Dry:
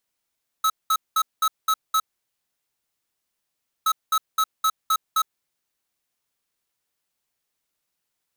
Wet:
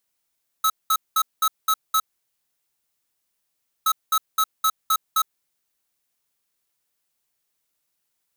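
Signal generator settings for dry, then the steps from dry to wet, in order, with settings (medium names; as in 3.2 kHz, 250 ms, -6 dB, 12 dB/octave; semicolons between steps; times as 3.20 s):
beep pattern square 1.29 kHz, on 0.06 s, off 0.20 s, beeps 6, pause 1.86 s, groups 2, -19.5 dBFS
treble shelf 7.1 kHz +5.5 dB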